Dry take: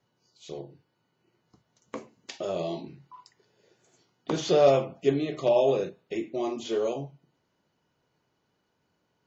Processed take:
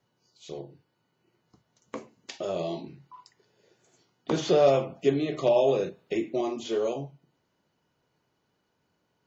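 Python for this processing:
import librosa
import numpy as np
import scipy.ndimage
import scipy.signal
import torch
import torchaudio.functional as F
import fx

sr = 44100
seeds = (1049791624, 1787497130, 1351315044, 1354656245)

y = fx.band_squash(x, sr, depth_pct=40, at=(4.31, 6.41))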